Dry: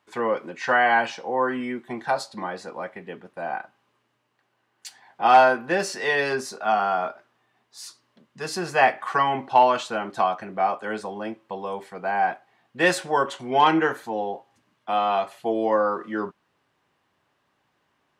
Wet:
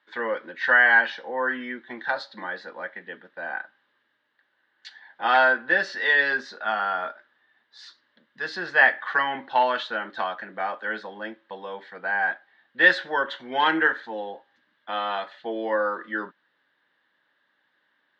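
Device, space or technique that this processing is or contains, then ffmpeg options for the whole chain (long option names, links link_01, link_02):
phone earpiece: -af "highpass=340,equalizer=frequency=400:width_type=q:width=4:gain=-9,equalizer=frequency=720:width_type=q:width=4:gain=-10,equalizer=frequency=1100:width_type=q:width=4:gain=-7,equalizer=frequency=1700:width_type=q:width=4:gain=10,equalizer=frequency=2500:width_type=q:width=4:gain=-8,equalizer=frequency=3700:width_type=q:width=4:gain=6,lowpass=frequency=4000:width=0.5412,lowpass=frequency=4000:width=1.3066,volume=1dB"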